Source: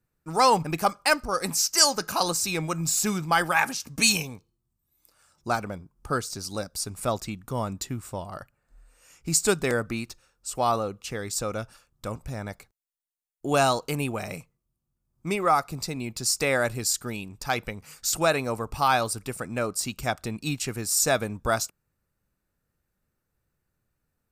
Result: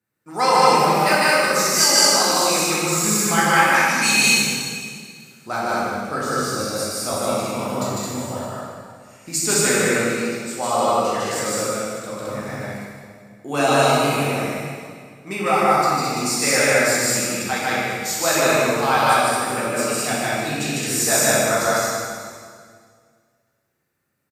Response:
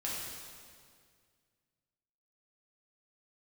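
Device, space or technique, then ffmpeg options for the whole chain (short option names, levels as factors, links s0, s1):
stadium PA: -filter_complex "[0:a]highpass=160,equalizer=f=2000:t=o:w=0.36:g=5.5,aecho=1:1:151.6|215.7:1|0.794[s0];[1:a]atrim=start_sample=2205[s1];[s0][s1]afir=irnorm=-1:irlink=0"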